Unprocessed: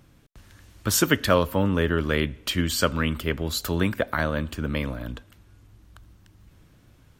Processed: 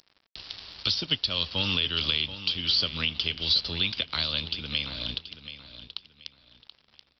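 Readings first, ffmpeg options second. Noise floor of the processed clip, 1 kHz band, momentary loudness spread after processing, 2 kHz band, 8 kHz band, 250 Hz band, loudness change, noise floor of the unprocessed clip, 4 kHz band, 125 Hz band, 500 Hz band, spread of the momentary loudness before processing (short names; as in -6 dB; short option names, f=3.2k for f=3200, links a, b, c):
-69 dBFS, -12.5 dB, 18 LU, -5.0 dB, under -20 dB, -13.5 dB, -1.5 dB, -56 dBFS, +8.0 dB, -10.5 dB, -16.0 dB, 10 LU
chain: -filter_complex "[0:a]aexciter=amount=14.7:drive=9.2:freq=2.8k,acrossover=split=170|930[a][b][c];[a]acompressor=threshold=-31dB:ratio=4[d];[b]acompressor=threshold=-36dB:ratio=4[e];[c]acompressor=threshold=-15dB:ratio=4[f];[d][e][f]amix=inputs=3:normalize=0,aresample=11025,aeval=exprs='sgn(val(0))*max(abs(val(0))-0.0112,0)':c=same,aresample=44100,alimiter=limit=-12.5dB:level=0:latency=1:release=467,aecho=1:1:730|1460|2190:0.237|0.0617|0.016"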